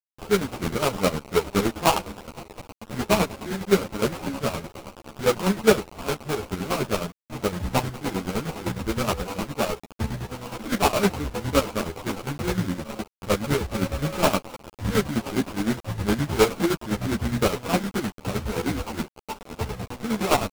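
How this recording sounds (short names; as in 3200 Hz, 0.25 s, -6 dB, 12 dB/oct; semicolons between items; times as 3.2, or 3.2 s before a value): a quantiser's noise floor 6-bit, dither none; chopped level 9.7 Hz, depth 65%, duty 45%; aliases and images of a low sample rate 1800 Hz, jitter 20%; a shimmering, thickened sound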